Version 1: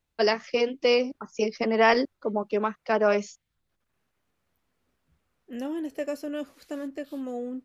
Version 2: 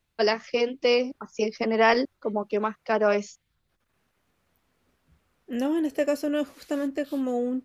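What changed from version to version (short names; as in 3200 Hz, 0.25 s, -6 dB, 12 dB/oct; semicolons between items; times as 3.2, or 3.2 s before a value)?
second voice +6.5 dB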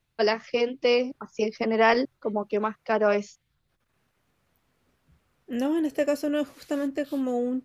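first voice: add air absorption 53 m; master: add bell 130 Hz +9.5 dB 0.21 oct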